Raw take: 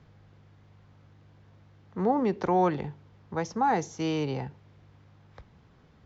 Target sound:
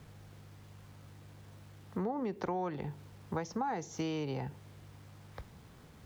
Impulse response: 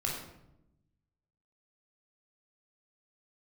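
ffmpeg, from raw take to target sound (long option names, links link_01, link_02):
-af "acrusher=bits=10:mix=0:aa=0.000001,acompressor=threshold=-35dB:ratio=8,volume=2.5dB"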